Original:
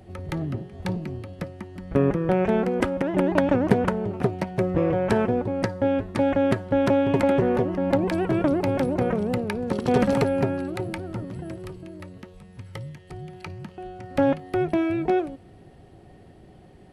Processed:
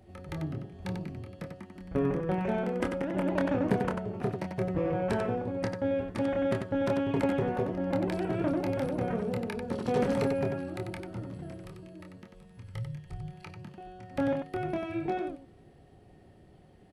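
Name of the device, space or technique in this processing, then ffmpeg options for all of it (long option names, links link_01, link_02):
slapback doubling: -filter_complex "[0:a]asplit=3[link_01][link_02][link_03];[link_01]afade=type=out:start_time=12.63:duration=0.02[link_04];[link_02]asubboost=boost=4.5:cutoff=120,afade=type=in:start_time=12.63:duration=0.02,afade=type=out:start_time=13.32:duration=0.02[link_05];[link_03]afade=type=in:start_time=13.32:duration=0.02[link_06];[link_04][link_05][link_06]amix=inputs=3:normalize=0,asplit=3[link_07][link_08][link_09];[link_08]adelay=26,volume=-5dB[link_10];[link_09]adelay=93,volume=-5.5dB[link_11];[link_07][link_10][link_11]amix=inputs=3:normalize=0,volume=-9dB"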